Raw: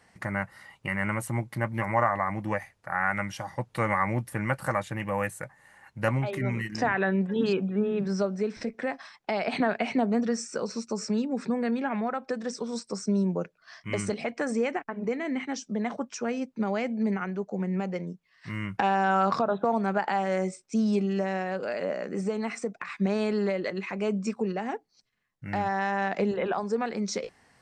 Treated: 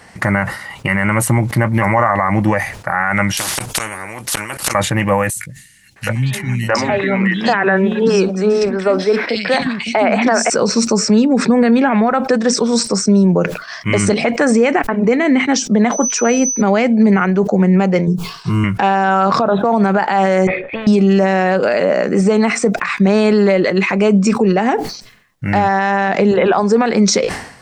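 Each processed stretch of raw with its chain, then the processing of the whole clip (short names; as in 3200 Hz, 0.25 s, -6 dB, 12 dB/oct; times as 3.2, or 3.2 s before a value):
3.37–4.75 flipped gate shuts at -21 dBFS, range -32 dB + bell 9900 Hz +13 dB 0.89 oct + spectral compressor 10:1
5.3–10.5 low shelf 320 Hz -7.5 dB + three bands offset in time highs, lows, mids 60/660 ms, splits 240/2700 Hz
15.91–16.6 HPF 230 Hz 24 dB/oct + whine 6000 Hz -41 dBFS
18.07–18.64 low shelf 470 Hz +6 dB + fixed phaser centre 380 Hz, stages 8
20.47–20.87 vocal tract filter e + transient shaper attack +4 dB, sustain 0 dB + spectral compressor 4:1
whole clip: maximiser +22 dB; sustainer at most 86 dB/s; gain -3.5 dB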